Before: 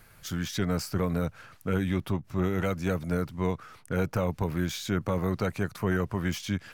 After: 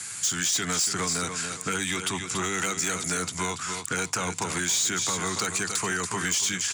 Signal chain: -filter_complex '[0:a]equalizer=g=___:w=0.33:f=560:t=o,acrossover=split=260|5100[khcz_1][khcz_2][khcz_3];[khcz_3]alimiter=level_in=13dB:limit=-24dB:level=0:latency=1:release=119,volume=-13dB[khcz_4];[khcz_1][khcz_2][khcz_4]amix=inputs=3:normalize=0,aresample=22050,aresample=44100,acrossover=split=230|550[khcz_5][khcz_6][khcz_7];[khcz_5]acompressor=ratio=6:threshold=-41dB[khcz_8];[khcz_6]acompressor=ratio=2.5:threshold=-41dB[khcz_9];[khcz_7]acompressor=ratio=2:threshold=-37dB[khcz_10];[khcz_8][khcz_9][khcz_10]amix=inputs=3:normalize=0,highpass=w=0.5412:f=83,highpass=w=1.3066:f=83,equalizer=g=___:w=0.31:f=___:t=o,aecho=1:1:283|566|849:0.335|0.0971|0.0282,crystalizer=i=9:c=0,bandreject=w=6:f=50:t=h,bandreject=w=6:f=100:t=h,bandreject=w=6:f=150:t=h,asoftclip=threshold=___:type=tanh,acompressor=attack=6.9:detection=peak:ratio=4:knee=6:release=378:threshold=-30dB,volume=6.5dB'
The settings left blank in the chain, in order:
-12, 12.5, 7.2k, -20dB